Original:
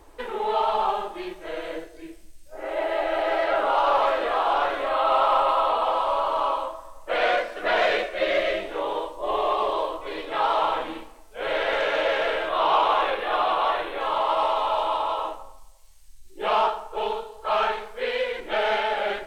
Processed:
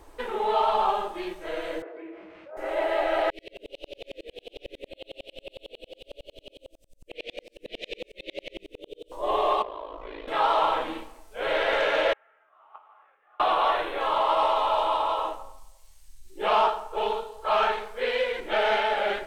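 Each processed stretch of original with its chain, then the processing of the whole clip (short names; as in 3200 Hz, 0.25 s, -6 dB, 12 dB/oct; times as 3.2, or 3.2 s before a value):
1.82–2.57 speaker cabinet 430–2100 Hz, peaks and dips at 440 Hz +3 dB, 1200 Hz +3 dB, 1700 Hz -6 dB + fast leveller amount 70%
3.3–9.12 elliptic band-stop 480–2500 Hz, stop band 60 dB + dB-ramp tremolo swelling 11 Hz, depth 40 dB
9.62–10.28 compressor 5:1, threshold -31 dBFS + ring modulator 27 Hz + air absorption 220 m
12.13–13.4 notch 980 Hz, Q 6.8 + gate -16 dBFS, range -39 dB + speaker cabinet 180–2600 Hz, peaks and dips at 190 Hz -7 dB, 320 Hz -8 dB, 500 Hz -8 dB, 920 Hz +8 dB, 1300 Hz +10 dB, 1900 Hz +5 dB
whole clip: dry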